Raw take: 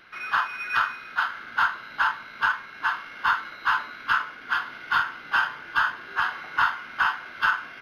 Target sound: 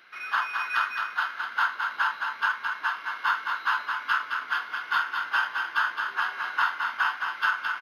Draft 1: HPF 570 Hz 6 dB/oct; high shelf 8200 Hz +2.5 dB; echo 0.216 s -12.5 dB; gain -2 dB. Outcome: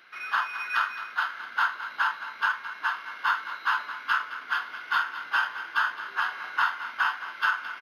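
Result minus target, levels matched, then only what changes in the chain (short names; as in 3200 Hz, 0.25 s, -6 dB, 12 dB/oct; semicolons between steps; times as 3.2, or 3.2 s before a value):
echo-to-direct -7.5 dB
change: echo 0.216 s -5 dB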